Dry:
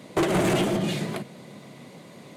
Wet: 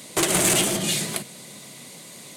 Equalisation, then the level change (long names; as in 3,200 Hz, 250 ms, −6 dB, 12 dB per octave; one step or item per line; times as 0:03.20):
high-shelf EQ 2,000 Hz +11.5 dB
high-shelf EQ 4,700 Hz +8 dB
parametric band 8,700 Hz +4.5 dB 0.81 octaves
−3.0 dB